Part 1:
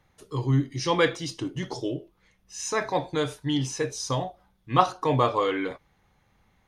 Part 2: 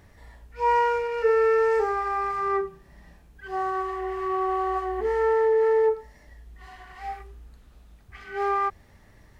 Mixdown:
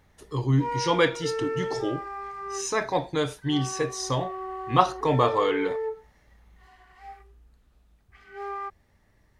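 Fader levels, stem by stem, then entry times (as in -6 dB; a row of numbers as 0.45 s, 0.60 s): +0.5 dB, -9.5 dB; 0.00 s, 0.00 s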